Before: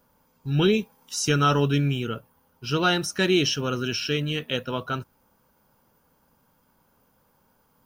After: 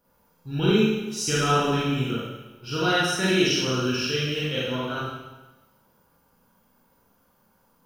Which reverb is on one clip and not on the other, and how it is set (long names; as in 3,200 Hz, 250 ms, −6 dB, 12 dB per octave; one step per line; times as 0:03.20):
four-comb reverb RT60 1.1 s, combs from 32 ms, DRR −7.5 dB
level −7 dB